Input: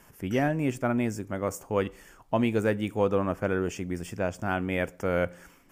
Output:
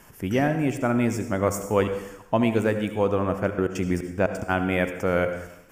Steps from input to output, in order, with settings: vocal rider 0.5 s; 3.49–4.48 step gate "xx..x.x.x" 176 bpm -24 dB; reverb RT60 0.80 s, pre-delay 62 ms, DRR 8.5 dB; gain +4 dB

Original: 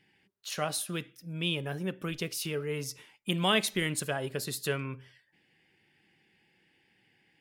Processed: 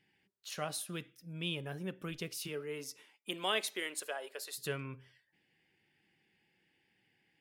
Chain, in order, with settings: 2.47–4.57 HPF 160 Hz -> 540 Hz 24 dB/oct; gain -6.5 dB

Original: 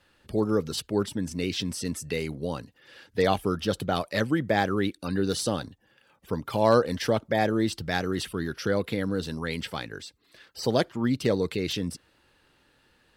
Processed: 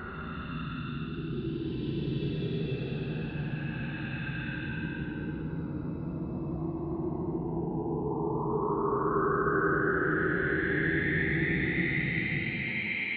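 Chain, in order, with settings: mistuned SSB -91 Hz 230–2800 Hz; dispersion highs, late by 0.112 s, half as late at 380 Hz; Paulstretch 37×, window 0.05 s, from 9.29; gain +3.5 dB

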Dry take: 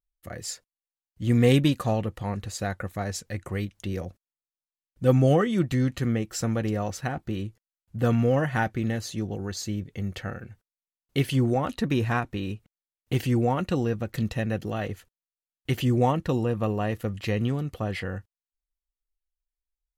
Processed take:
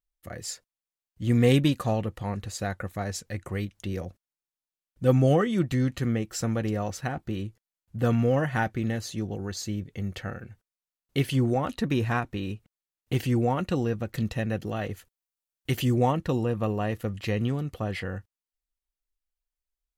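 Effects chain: 14.9–15.93 high shelf 8300 Hz -> 4500 Hz +6 dB; gain -1 dB

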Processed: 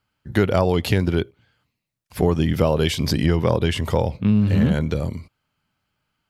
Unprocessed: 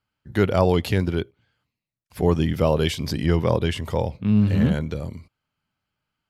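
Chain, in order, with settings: compressor 4:1, threshold -20 dBFS, peak gain reduction 7.5 dB; gain +6 dB

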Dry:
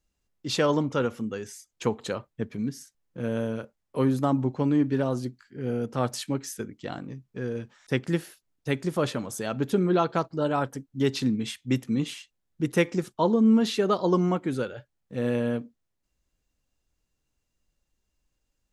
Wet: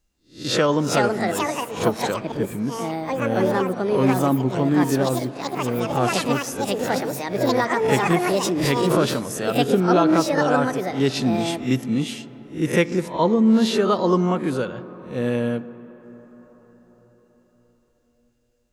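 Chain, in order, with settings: spectral swells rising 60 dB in 0.34 s; reverb RT60 5.6 s, pre-delay 0.103 s, DRR 17 dB; echoes that change speed 0.552 s, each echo +6 st, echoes 2; 8.1–9.35 backwards sustainer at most 32 dB/s; gain +3.5 dB

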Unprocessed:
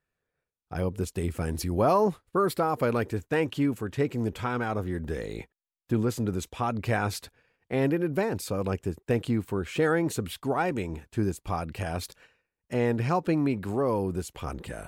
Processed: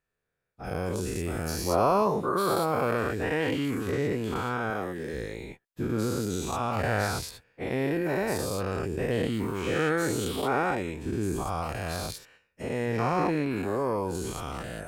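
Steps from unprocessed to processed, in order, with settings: spectral dilation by 0.24 s; 4.7–5.14 HPF 150 Hz 12 dB/oct; gain -6.5 dB

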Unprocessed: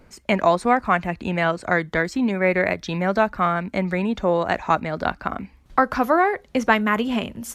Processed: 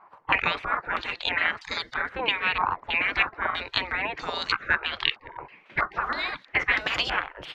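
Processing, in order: spectral gate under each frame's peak -20 dB weak; stepped low-pass 3.1 Hz 1000–4800 Hz; gain +7 dB

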